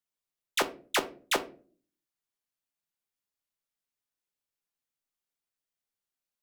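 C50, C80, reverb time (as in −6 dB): 16.5 dB, 21.0 dB, 0.40 s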